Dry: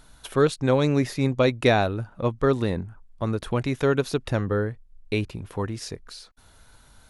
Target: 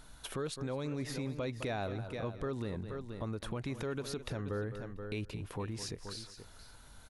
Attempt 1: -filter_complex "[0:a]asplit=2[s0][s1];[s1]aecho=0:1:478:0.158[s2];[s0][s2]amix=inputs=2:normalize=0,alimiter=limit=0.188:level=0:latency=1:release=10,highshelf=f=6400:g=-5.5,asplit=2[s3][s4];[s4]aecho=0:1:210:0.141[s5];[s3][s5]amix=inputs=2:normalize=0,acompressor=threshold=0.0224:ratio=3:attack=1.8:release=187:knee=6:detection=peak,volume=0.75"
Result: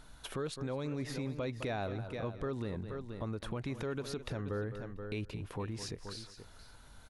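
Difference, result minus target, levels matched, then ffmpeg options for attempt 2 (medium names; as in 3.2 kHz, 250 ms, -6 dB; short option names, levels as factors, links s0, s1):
8 kHz band -2.5 dB
-filter_complex "[0:a]asplit=2[s0][s1];[s1]aecho=0:1:478:0.158[s2];[s0][s2]amix=inputs=2:normalize=0,alimiter=limit=0.188:level=0:latency=1:release=10,asplit=2[s3][s4];[s4]aecho=0:1:210:0.141[s5];[s3][s5]amix=inputs=2:normalize=0,acompressor=threshold=0.0224:ratio=3:attack=1.8:release=187:knee=6:detection=peak,volume=0.75"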